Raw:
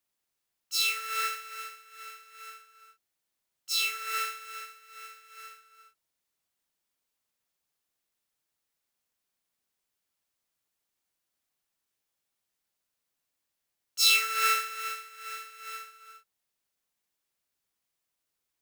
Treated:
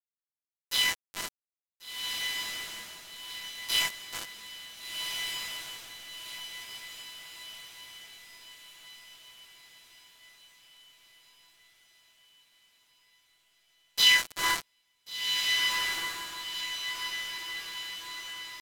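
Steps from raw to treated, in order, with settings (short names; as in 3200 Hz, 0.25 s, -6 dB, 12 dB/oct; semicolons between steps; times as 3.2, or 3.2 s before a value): LPF 10000 Hz 24 dB/oct; bell 4100 Hz +10.5 dB 2.9 oct; notches 60/120/180 Hz; sample gate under -17.5 dBFS; pitch shift -5 st; diffused feedback echo 1.473 s, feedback 53%, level -3 dB; gain -7.5 dB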